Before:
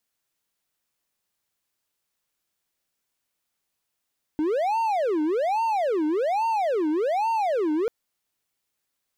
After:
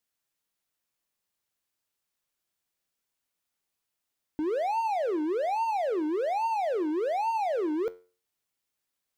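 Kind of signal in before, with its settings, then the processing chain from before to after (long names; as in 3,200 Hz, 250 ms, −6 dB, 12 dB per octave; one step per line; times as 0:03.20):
siren wail 302–914 Hz 1.2 per second triangle −19 dBFS 3.49 s
tuned comb filter 90 Hz, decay 0.37 s, harmonics all, mix 50%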